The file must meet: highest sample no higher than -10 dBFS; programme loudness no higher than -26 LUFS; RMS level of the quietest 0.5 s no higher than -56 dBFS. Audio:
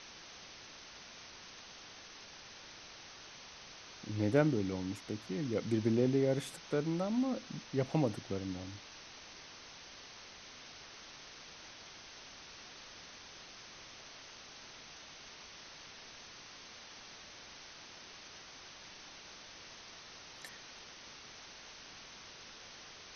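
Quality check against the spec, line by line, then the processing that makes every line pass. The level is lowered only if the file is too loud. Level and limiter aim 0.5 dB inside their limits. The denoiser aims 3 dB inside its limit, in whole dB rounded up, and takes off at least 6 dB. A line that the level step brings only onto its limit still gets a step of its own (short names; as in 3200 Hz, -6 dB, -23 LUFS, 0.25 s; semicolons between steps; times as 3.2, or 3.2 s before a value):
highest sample -15.0 dBFS: OK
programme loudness -41.0 LUFS: OK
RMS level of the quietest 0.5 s -53 dBFS: fail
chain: denoiser 6 dB, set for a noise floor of -53 dBFS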